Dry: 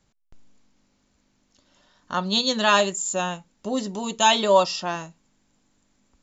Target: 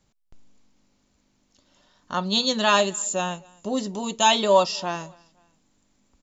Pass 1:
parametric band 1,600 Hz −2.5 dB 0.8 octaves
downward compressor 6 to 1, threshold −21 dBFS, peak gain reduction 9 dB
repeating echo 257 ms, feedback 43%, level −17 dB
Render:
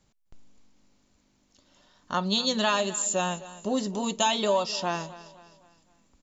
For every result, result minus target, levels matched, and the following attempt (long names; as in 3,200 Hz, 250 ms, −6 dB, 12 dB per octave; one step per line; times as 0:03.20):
downward compressor: peak gain reduction +9 dB; echo-to-direct +9.5 dB
parametric band 1,600 Hz −2.5 dB 0.8 octaves
repeating echo 257 ms, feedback 43%, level −17 dB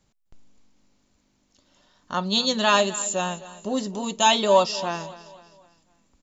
echo-to-direct +9.5 dB
parametric band 1,600 Hz −2.5 dB 0.8 octaves
repeating echo 257 ms, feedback 43%, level −26.5 dB